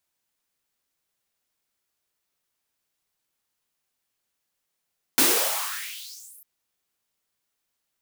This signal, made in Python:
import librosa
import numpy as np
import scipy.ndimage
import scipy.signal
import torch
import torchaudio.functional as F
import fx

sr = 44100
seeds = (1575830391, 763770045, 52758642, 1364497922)

y = fx.riser_noise(sr, seeds[0], length_s=1.25, colour='white', kind='highpass', start_hz=240.0, end_hz=13000.0, q=4.1, swell_db=-37.0, law='exponential')